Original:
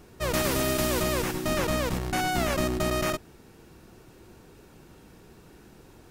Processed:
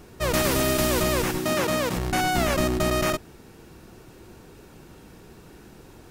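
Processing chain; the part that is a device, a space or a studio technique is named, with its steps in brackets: 1.44–1.97 Bessel high-pass 150 Hz, order 2; parallel distortion (in parallel at -13 dB: hard clip -29 dBFS, distortion -8 dB); on the sum: gain +2.5 dB

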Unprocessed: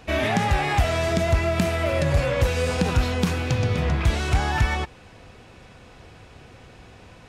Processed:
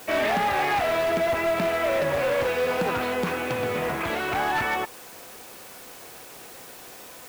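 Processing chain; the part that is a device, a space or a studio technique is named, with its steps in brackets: aircraft radio (BPF 340–2400 Hz; hard clip -23.5 dBFS, distortion -14 dB; white noise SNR 19 dB); gain +3.5 dB

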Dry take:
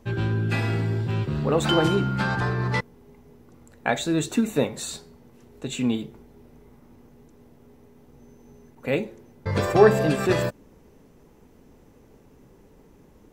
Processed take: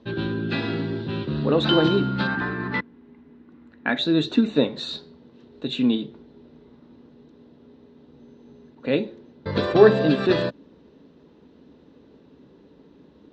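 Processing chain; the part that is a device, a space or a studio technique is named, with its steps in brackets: guitar cabinet (speaker cabinet 95–4200 Hz, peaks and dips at 110 Hz -10 dB, 280 Hz +5 dB, 780 Hz -6 dB, 1200 Hz -3 dB, 2200 Hz -7 dB, 3900 Hz +9 dB); 2.27–3.99 graphic EQ 125/250/500/2000/4000/8000 Hz -7/+5/-8/+6/-9/-9 dB; gain +2 dB

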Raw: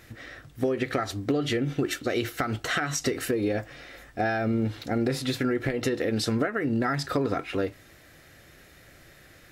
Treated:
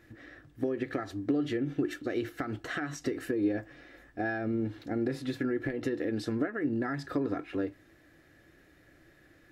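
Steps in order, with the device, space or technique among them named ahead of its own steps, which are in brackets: inside a helmet (high shelf 3000 Hz -8 dB; small resonant body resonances 310/1700 Hz, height 10 dB, ringing for 40 ms); gain -8.5 dB

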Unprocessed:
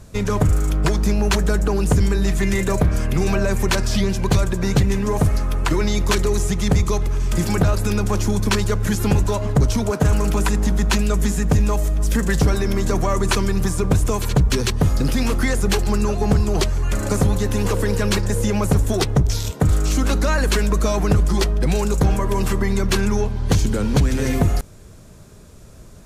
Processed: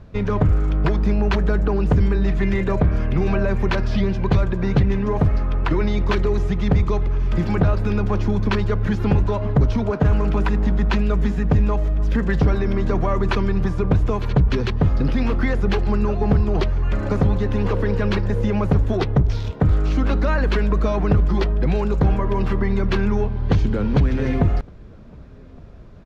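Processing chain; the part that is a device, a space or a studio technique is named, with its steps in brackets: shout across a valley (air absorption 300 m; outdoor echo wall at 200 m, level -27 dB)

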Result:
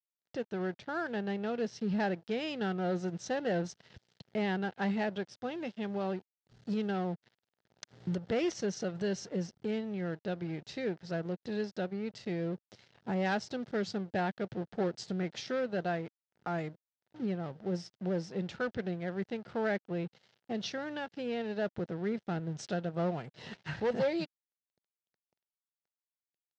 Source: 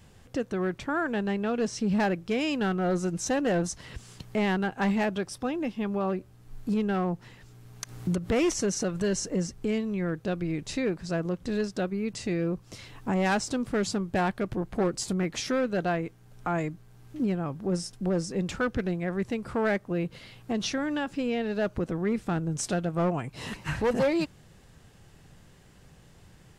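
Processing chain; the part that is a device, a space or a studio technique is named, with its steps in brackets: 5.51–6.91 high shelf 3500 Hz +8.5 dB; blown loudspeaker (crossover distortion -44 dBFS; speaker cabinet 130–5200 Hz, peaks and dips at 280 Hz -8 dB, 1100 Hz -9 dB, 2400 Hz -5 dB); gain -3.5 dB

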